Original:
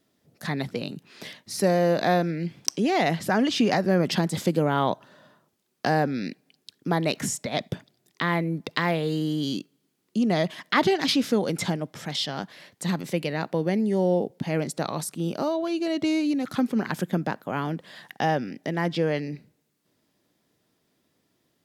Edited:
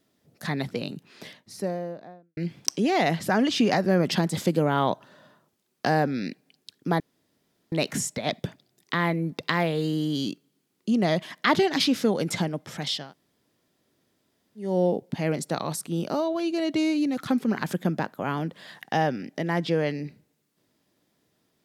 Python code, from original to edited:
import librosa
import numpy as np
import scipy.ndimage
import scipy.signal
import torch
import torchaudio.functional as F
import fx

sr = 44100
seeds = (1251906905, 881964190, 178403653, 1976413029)

y = fx.studio_fade_out(x, sr, start_s=0.84, length_s=1.53)
y = fx.edit(y, sr, fx.insert_room_tone(at_s=7.0, length_s=0.72),
    fx.room_tone_fill(start_s=12.3, length_s=1.65, crossfade_s=0.24), tone=tone)